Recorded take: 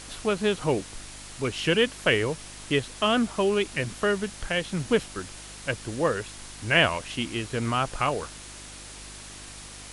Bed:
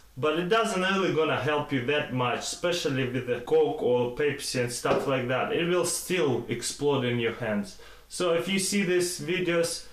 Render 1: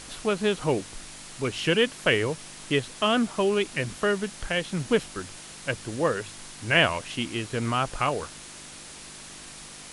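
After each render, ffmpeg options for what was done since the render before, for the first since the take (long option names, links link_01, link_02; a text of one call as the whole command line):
ffmpeg -i in.wav -af "bandreject=frequency=50:width_type=h:width=4,bandreject=frequency=100:width_type=h:width=4" out.wav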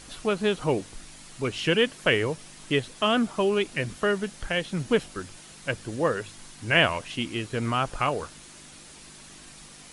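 ffmpeg -i in.wav -af "afftdn=noise_reduction=6:noise_floor=-44" out.wav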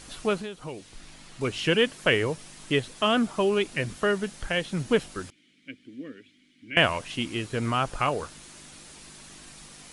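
ffmpeg -i in.wav -filter_complex "[0:a]asettb=1/sr,asplit=3[link_01][link_02][link_03];[link_01]atrim=end=0.404[link_04];[link_02]atrim=start=0.4:end=1.41,asetpts=PTS-STARTPTS,afade=type=in:duration=0.004:curve=qsin,afade=type=out:start_time=1.006:duration=0.004:curve=qsin,acrossover=split=2200|5200[link_05][link_06][link_07];[link_05]acompressor=threshold=-37dB:ratio=4[link_08];[link_06]acompressor=threshold=-48dB:ratio=4[link_09];[link_07]acompressor=threshold=-58dB:ratio=4[link_10];[link_08][link_09][link_10]amix=inputs=3:normalize=0[link_11];[link_03]atrim=start=1.406[link_12];[link_04][link_11]acrossfade=duration=0.004:curve1=hsin:curve2=qsin[link_13];[link_13][link_12]acrossfade=duration=0.004:curve1=qsin:curve2=hsin,asettb=1/sr,asplit=3[link_14][link_15][link_16];[link_14]atrim=end=5.304[link_17];[link_15]atrim=start=5.3:end=6.77,asetpts=PTS-STARTPTS,afade=type=in:duration=0.004:curve=qsin,afade=type=out:start_time=1.466:duration=0.004:curve=qsin,asplit=3[link_18][link_19][link_20];[link_18]bandpass=frequency=270:width_type=q:width=8,volume=0dB[link_21];[link_19]bandpass=frequency=2290:width_type=q:width=8,volume=-6dB[link_22];[link_20]bandpass=frequency=3010:width_type=q:width=8,volume=-9dB[link_23];[link_21][link_22][link_23]amix=inputs=3:normalize=0[link_24];[link_16]atrim=start=6.766[link_25];[link_17][link_24]acrossfade=duration=0.004:curve1=hsin:curve2=qsin[link_26];[link_26][link_25]acrossfade=duration=0.004:curve1=qsin:curve2=hsin" out.wav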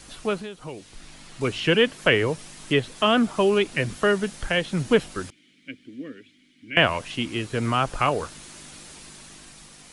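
ffmpeg -i in.wav -filter_complex "[0:a]acrossover=split=330|820|4400[link_01][link_02][link_03][link_04];[link_04]alimiter=level_in=14dB:limit=-24dB:level=0:latency=1:release=262,volume=-14dB[link_05];[link_01][link_02][link_03][link_05]amix=inputs=4:normalize=0,dynaudnorm=framelen=180:gausssize=11:maxgain=4dB" out.wav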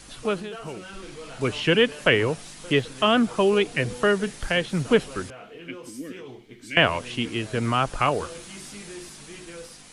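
ffmpeg -i in.wav -i bed.wav -filter_complex "[1:a]volume=-16dB[link_01];[0:a][link_01]amix=inputs=2:normalize=0" out.wav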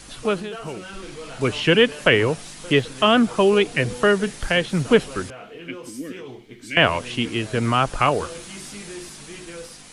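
ffmpeg -i in.wav -af "volume=3.5dB,alimiter=limit=-2dB:level=0:latency=1" out.wav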